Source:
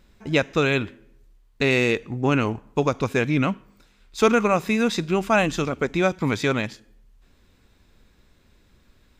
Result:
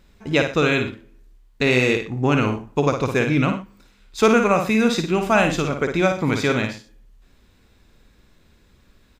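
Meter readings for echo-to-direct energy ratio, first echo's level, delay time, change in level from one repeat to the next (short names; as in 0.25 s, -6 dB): -5.5 dB, -6.0 dB, 55 ms, no steady repeat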